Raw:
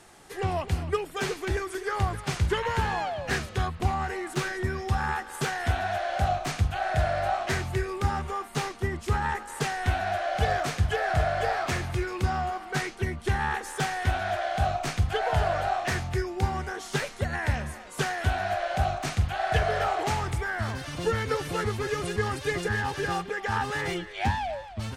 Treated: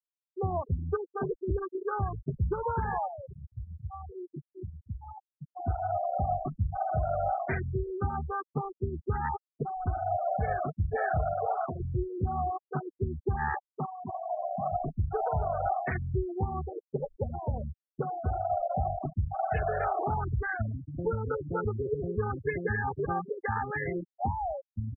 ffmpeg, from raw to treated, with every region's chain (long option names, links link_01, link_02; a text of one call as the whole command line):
ffmpeg -i in.wav -filter_complex "[0:a]asettb=1/sr,asplit=3[link_01][link_02][link_03];[link_01]atrim=end=3.074[link_04];[link_02]atrim=start=3.07:end=5.55,asetpts=PTS-STARTPTS,afade=type=in:duration=0.004:curve=qsin,afade=type=out:start_time=2.476:duration=0.004:curve=qsin,aecho=1:1:221:0.106,atrim=end_sample=109368,acompressor=threshold=-35dB:ratio=3:attack=3.2:release=140:knee=1:detection=peak[link_05];[link_03]atrim=start=5.546[link_06];[link_04][link_05]acrossfade=duration=0.004:curve1=hsin:curve2=qsin[link_07];[link_07][link_06]acrossfade=duration=0.004:curve1=qsin:curve2=hsin,asettb=1/sr,asplit=3[link_08][link_09][link_10];[link_08]atrim=end=11.334[link_11];[link_09]atrim=start=11.33:end=11.8,asetpts=PTS-STARTPTS,afade=type=in:duration=0.004:curve=qsin,afade=type=out:start_time=0.466:duration=0.004:curve=qsin,highpass=96,lowshelf=frequency=490:gain=-4.5,asplit=2[link_12][link_13];[link_13]adelay=12,volume=-11.5dB[link_14];[link_12][link_14]amix=inputs=2:normalize=0,atrim=end_sample=20727[link_15];[link_10]atrim=start=11.796[link_16];[link_11][link_15]acrossfade=duration=0.004:curve1=hsin:curve2=qsin[link_17];[link_17][link_16]acrossfade=duration=0.004:curve1=qsin:curve2=hsin,asettb=1/sr,asplit=3[link_18][link_19][link_20];[link_18]atrim=end=13.644[link_21];[link_19]atrim=start=13.64:end=14.72,asetpts=PTS-STARTPTS,afade=type=in:duration=0.004:curve=qsin,afade=type=out:start_time=1.076:duration=0.004:curve=qsin,highpass=frequency=180:width=0.5412,highpass=frequency=180:width=1.3066,equalizer=frequency=290:width_type=q:width=4:gain=-4,equalizer=frequency=530:width_type=q:width=4:gain=10,equalizer=frequency=780:width_type=q:width=4:gain=-8,equalizer=frequency=1600:width_type=q:width=4:gain=-7,lowpass=frequency=2700:width=0.5412,lowpass=frequency=2700:width=1.3066,aecho=1:1:1:0.69,atrim=end_sample=47628[link_22];[link_20]atrim=start=14.716[link_23];[link_21][link_22]acrossfade=duration=0.004:curve1=hsin:curve2=qsin[link_24];[link_24][link_23]acrossfade=duration=0.004:curve1=qsin:curve2=hsin,asettb=1/sr,asplit=3[link_25][link_26][link_27];[link_25]atrim=end=16.634[link_28];[link_26]atrim=start=16.63:end=18.52,asetpts=PTS-STARTPTS,afade=type=in:duration=0.004:curve=qsin,afade=type=out:start_time=1.886:duration=0.004:curve=qsin,asuperstop=centerf=2300:order=4:qfactor=1.3,equalizer=frequency=500:width=4.8:gain=7,bandreject=frequency=50:width_type=h:width=6,bandreject=frequency=100:width_type=h:width=6,bandreject=frequency=150:width_type=h:width=6,bandreject=frequency=200:width_type=h:width=6,bandreject=frequency=250:width_type=h:width=6,bandreject=frequency=300:width_type=h:width=6[link_29];[link_27]atrim=start=18.516[link_30];[link_28][link_29]acrossfade=duration=0.004:curve1=hsin:curve2=qsin[link_31];[link_31][link_30]acrossfade=duration=0.004:curve1=qsin:curve2=hsin,afwtdn=0.0355,afftfilt=real='re*gte(hypot(re,im),0.0562)':imag='im*gte(hypot(re,im),0.0562)':win_size=1024:overlap=0.75,alimiter=limit=-20dB:level=0:latency=1:release=194" out.wav